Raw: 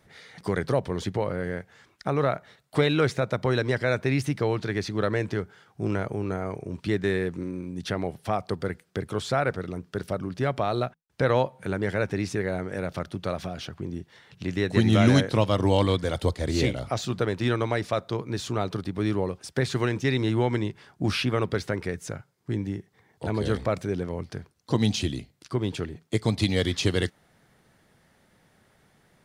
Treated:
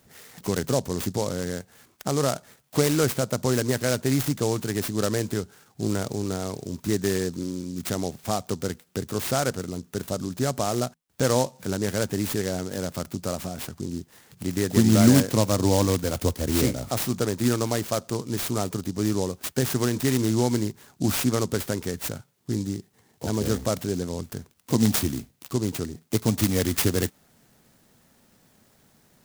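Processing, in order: resonant high shelf 4700 Hz +10 dB, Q 1.5; small resonant body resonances 240/3700 Hz, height 6 dB; noise-modulated delay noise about 5700 Hz, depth 0.079 ms

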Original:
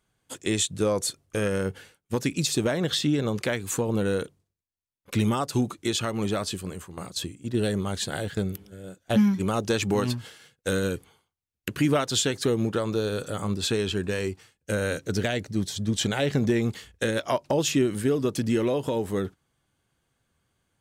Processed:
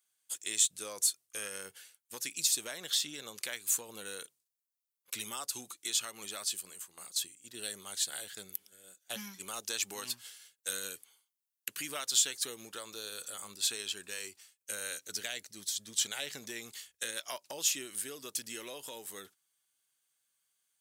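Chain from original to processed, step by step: differentiator; in parallel at -12 dB: hard clip -31 dBFS, distortion -7 dB

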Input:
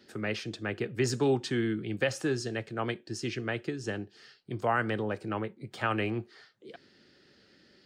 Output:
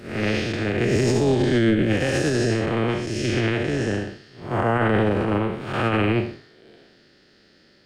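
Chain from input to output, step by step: time blur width 0.274 s; AM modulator 230 Hz, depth 40%; maximiser +29 dB; upward expander 1.5:1, over -29 dBFS; gain -8.5 dB

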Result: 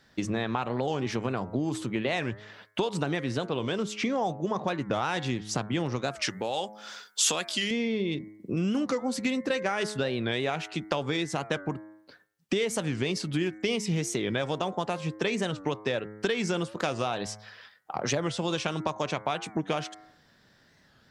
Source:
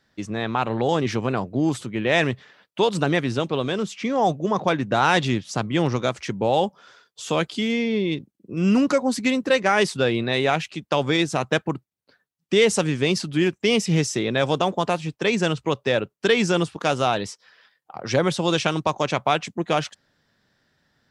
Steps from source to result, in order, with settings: de-hum 105.7 Hz, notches 21; compressor 6:1, threshold -32 dBFS, peak gain reduction 17.5 dB; 6.23–7.71 tilt +3 dB/oct; record warp 45 rpm, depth 160 cents; gain +5.5 dB

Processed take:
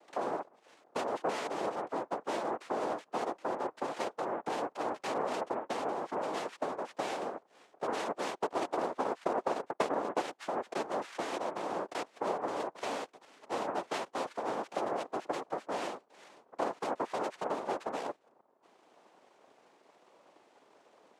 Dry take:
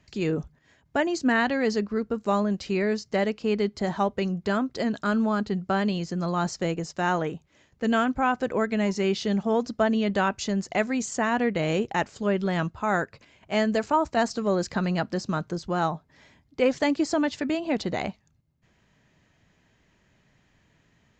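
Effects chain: compressor 4:1, threshold -38 dBFS, peak gain reduction 17 dB; high shelf 3400 Hz -6.5 dB; noise vocoder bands 2; 8.26–10.41 transient shaper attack +6 dB, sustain -10 dB; three-band isolator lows -23 dB, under 270 Hz, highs -13 dB, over 2900 Hz; gain +5 dB

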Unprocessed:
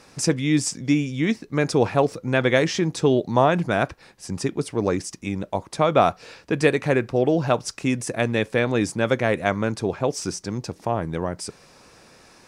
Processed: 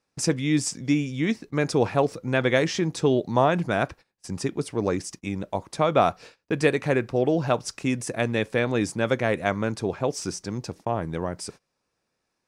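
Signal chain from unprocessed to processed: gate -39 dBFS, range -25 dB; gain -2.5 dB

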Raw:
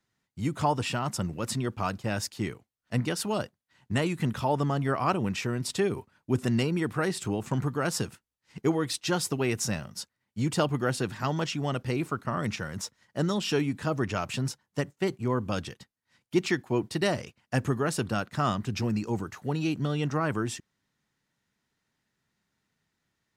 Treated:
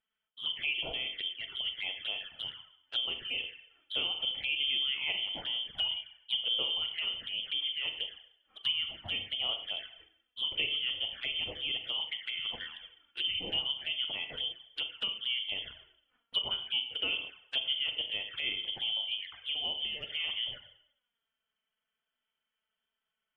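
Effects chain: notches 50/100/150/200/250/300/350 Hz; Schroeder reverb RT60 0.68 s, combs from 29 ms, DRR 6.5 dB; inverted band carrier 3300 Hz; vibrato 1.1 Hz 7.8 cents; envelope flanger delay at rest 4.6 ms, full sweep at -26 dBFS; gain -5 dB; MP3 40 kbps 44100 Hz

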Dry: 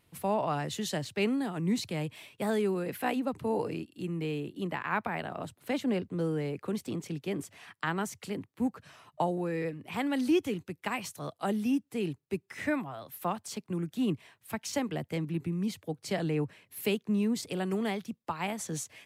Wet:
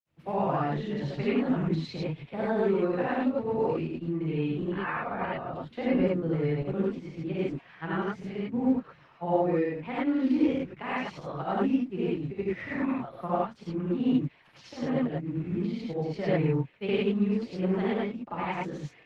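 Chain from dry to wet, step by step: in parallel at -3 dB: crossover distortion -49.5 dBFS; on the sum: grains, spray 0.1 s; air absorption 310 m; non-linear reverb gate 0.13 s rising, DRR -7.5 dB; gain -6 dB; Opus 16 kbps 48000 Hz

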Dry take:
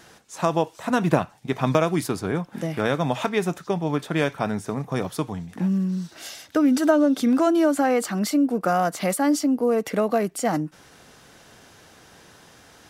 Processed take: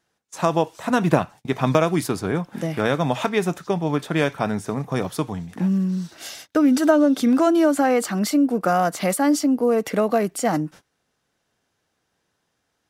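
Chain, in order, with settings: gate -42 dBFS, range -25 dB; gain +2 dB

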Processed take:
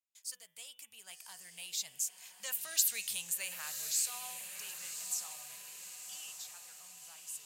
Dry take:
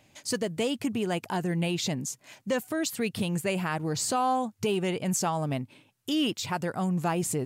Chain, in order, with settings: Doppler pass-by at 2.88, 10 m/s, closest 5.6 m; RIAA curve recording; de-hum 123.9 Hz, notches 29; gate with hold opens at -55 dBFS; passive tone stack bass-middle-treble 10-0-10; diffused feedback echo 1.094 s, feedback 52%, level -7.5 dB; gain -5 dB

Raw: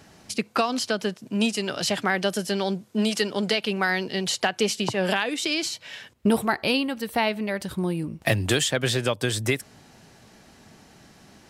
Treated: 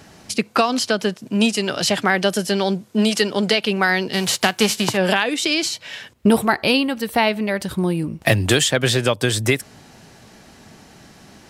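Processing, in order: 4.12–4.96 spectral whitening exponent 0.6; gain +6 dB

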